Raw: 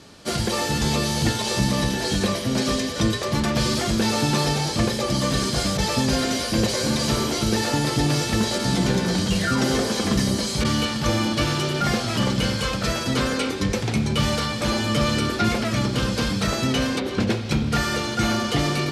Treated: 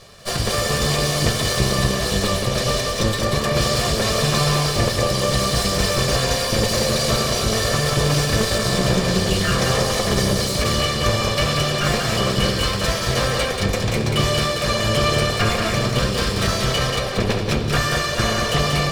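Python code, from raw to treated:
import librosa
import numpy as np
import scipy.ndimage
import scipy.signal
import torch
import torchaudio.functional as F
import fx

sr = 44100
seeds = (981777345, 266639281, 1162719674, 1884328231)

p1 = fx.lower_of_two(x, sr, delay_ms=1.7)
p2 = fx.notch(p1, sr, hz=6300.0, q=25.0)
p3 = p2 + fx.echo_single(p2, sr, ms=185, db=-4.5, dry=0)
y = p3 * librosa.db_to_amplitude(3.5)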